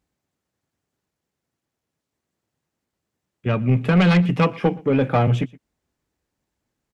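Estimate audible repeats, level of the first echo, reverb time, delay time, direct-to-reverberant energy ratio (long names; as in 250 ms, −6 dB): 1, −23.0 dB, no reverb audible, 119 ms, no reverb audible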